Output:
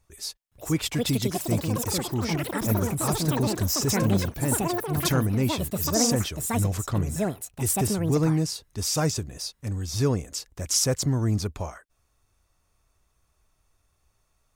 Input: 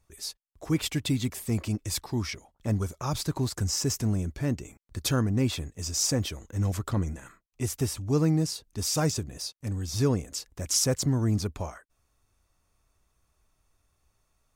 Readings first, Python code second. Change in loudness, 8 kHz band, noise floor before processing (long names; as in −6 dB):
+3.5 dB, +3.5 dB, −74 dBFS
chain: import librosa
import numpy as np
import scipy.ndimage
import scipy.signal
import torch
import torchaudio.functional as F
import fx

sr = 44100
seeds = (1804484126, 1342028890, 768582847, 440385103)

y = fx.peak_eq(x, sr, hz=250.0, db=-2.5, octaves=0.77)
y = fx.echo_pitch(y, sr, ms=517, semitones=7, count=3, db_per_echo=-3.0)
y = y * librosa.db_to_amplitude(2.0)